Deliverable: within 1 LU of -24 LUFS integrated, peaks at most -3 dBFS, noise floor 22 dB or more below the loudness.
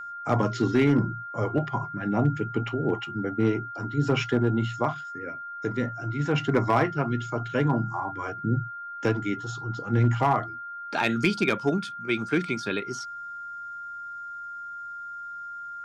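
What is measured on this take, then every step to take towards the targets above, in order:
clipped samples 0.3%; clipping level -14.0 dBFS; steady tone 1.4 kHz; tone level -35 dBFS; loudness -27.5 LUFS; peak level -14.0 dBFS; loudness target -24.0 LUFS
-> clip repair -14 dBFS; band-stop 1.4 kHz, Q 30; trim +3.5 dB

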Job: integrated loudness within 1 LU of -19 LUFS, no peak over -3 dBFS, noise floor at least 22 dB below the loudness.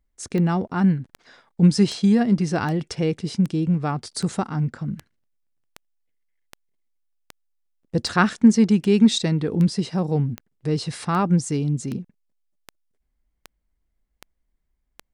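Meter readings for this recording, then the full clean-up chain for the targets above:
clicks found 20; loudness -21.5 LUFS; peak level -4.5 dBFS; loudness target -19.0 LUFS
-> de-click; trim +2.5 dB; peak limiter -3 dBFS

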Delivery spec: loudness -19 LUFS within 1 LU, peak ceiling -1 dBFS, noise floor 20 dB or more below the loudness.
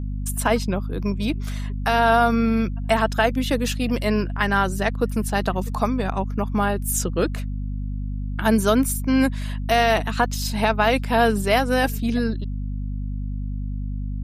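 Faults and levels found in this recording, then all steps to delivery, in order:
hum 50 Hz; highest harmonic 250 Hz; hum level -25 dBFS; loudness -22.5 LUFS; peak level -6.0 dBFS; loudness target -19.0 LUFS
-> hum notches 50/100/150/200/250 Hz; trim +3.5 dB

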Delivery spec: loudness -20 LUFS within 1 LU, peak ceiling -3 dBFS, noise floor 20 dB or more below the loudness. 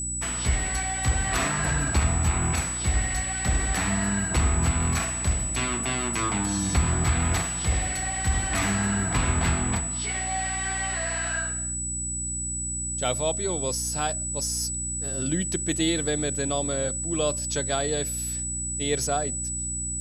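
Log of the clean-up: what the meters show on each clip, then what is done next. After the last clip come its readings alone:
hum 60 Hz; highest harmonic 300 Hz; hum level -34 dBFS; steady tone 7.9 kHz; tone level -29 dBFS; loudness -25.5 LUFS; peak level -11.5 dBFS; loudness target -20.0 LUFS
-> hum notches 60/120/180/240/300 Hz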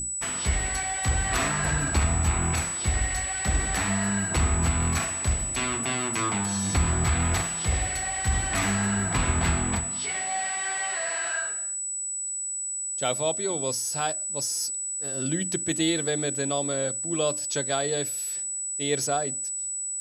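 hum not found; steady tone 7.9 kHz; tone level -29 dBFS
-> band-stop 7.9 kHz, Q 30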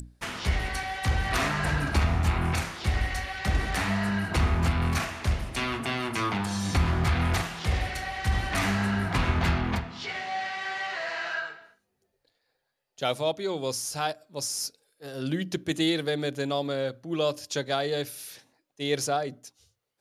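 steady tone not found; loudness -28.5 LUFS; peak level -13.5 dBFS; loudness target -20.0 LUFS
-> trim +8.5 dB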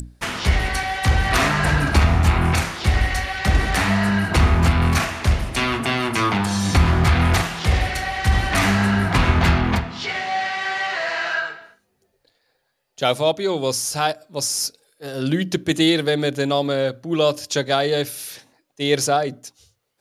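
loudness -20.0 LUFS; peak level -5.0 dBFS; noise floor -69 dBFS

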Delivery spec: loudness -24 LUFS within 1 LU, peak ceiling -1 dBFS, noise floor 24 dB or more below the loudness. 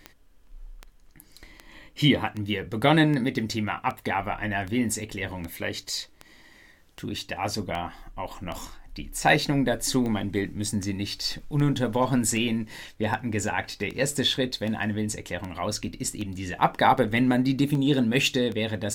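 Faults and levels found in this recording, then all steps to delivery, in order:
clicks found 25; loudness -26.0 LUFS; peak level -5.5 dBFS; loudness target -24.0 LUFS
-> de-click; trim +2 dB

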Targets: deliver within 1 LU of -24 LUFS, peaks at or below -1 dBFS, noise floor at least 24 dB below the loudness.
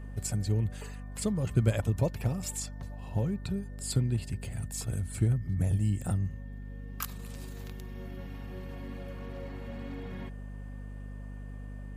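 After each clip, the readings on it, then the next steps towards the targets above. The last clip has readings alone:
hum 50 Hz; highest harmonic 250 Hz; hum level -39 dBFS; steady tone 1.8 kHz; tone level -60 dBFS; loudness -33.5 LUFS; peak level -14.0 dBFS; loudness target -24.0 LUFS
-> hum notches 50/100/150/200/250 Hz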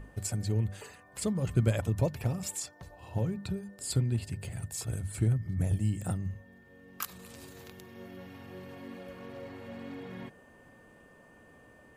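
hum not found; steady tone 1.8 kHz; tone level -60 dBFS
-> band-stop 1.8 kHz, Q 30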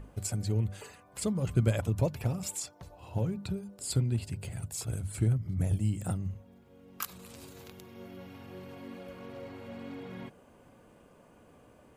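steady tone not found; loudness -33.5 LUFS; peak level -13.5 dBFS; loudness target -24.0 LUFS
-> trim +9.5 dB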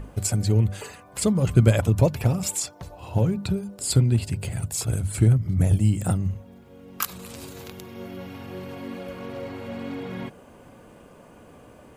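loudness -24.0 LUFS; peak level -4.0 dBFS; noise floor -50 dBFS

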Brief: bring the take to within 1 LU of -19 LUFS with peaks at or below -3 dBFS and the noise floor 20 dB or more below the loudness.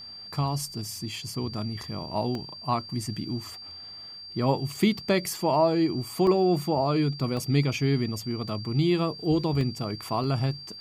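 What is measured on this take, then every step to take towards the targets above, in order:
dropouts 6; longest dropout 1.3 ms; steady tone 4.7 kHz; tone level -40 dBFS; loudness -27.0 LUFS; peak level -10.0 dBFS; loudness target -19.0 LUFS
-> interpolate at 2.35/4.76/6.27/7.37/9.61/10.24 s, 1.3 ms; band-stop 4.7 kHz, Q 30; trim +8 dB; peak limiter -3 dBFS

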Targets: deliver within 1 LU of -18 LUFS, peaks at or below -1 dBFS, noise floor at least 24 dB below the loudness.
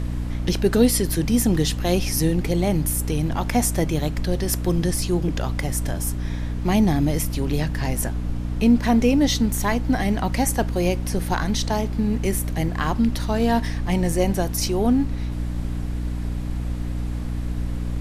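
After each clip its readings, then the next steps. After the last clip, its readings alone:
hum 60 Hz; highest harmonic 300 Hz; hum level -24 dBFS; noise floor -27 dBFS; noise floor target -47 dBFS; loudness -22.5 LUFS; peak level -5.0 dBFS; loudness target -18.0 LUFS
-> hum notches 60/120/180/240/300 Hz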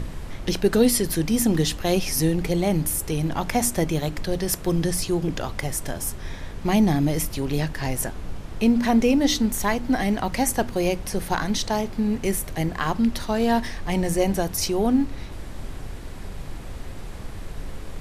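hum not found; noise floor -36 dBFS; noise floor target -48 dBFS
-> noise print and reduce 12 dB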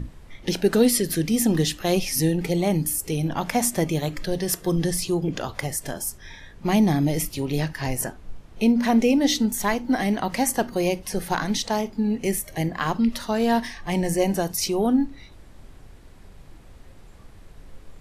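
noise floor -47 dBFS; noise floor target -48 dBFS
-> noise print and reduce 6 dB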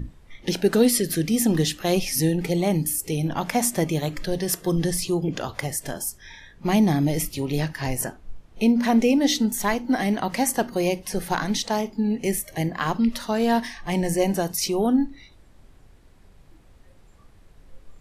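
noise floor -53 dBFS; loudness -23.5 LUFS; peak level -7.0 dBFS; loudness target -18.0 LUFS
-> trim +5.5 dB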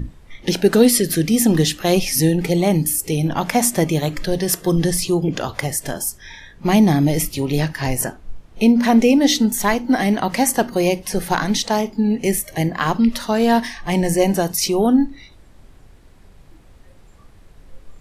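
loudness -18.0 LUFS; peak level -1.5 dBFS; noise floor -47 dBFS

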